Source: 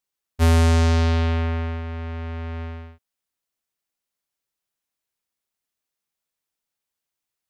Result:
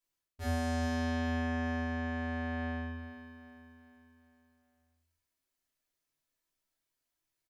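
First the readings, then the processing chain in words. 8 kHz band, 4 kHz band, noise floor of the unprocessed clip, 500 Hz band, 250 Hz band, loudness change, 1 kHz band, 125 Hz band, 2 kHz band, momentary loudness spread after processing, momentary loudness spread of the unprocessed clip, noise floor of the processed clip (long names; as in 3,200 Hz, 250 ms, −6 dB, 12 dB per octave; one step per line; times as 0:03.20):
below −10 dB, −13.5 dB, −85 dBFS, −11.0 dB, −7.0 dB, −13.5 dB, −9.0 dB, can't be measured, −5.5 dB, 17 LU, 16 LU, below −85 dBFS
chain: reversed playback
downward compressor 6 to 1, threshold −30 dBFS, peak gain reduction 13.5 dB
reversed playback
repeating echo 408 ms, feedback 48%, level −11.5 dB
rectangular room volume 140 cubic metres, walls furnished, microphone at 2.9 metres
level −7.5 dB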